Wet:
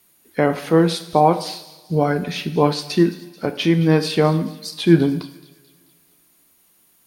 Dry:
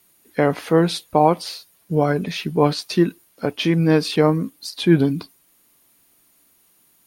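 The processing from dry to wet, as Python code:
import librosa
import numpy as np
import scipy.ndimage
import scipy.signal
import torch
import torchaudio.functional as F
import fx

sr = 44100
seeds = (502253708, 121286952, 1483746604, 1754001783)

y = fx.echo_wet_highpass(x, sr, ms=218, feedback_pct=50, hz=2800.0, wet_db=-15.5)
y = fx.rev_double_slope(y, sr, seeds[0], early_s=0.67, late_s=2.0, knee_db=-18, drr_db=9.0)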